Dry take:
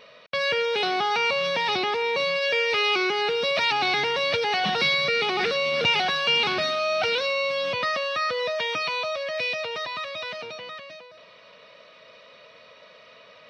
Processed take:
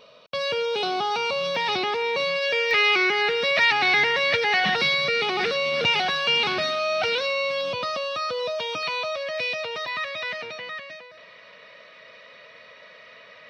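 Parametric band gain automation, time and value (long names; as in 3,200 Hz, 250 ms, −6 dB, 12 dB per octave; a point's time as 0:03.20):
parametric band 1,900 Hz 0.5 octaves
−12 dB
from 0:01.55 −0.5 dB
from 0:02.71 +10.5 dB
from 0:04.76 +0.5 dB
from 0:07.61 −11.5 dB
from 0:08.83 0 dB
from 0:09.88 +9 dB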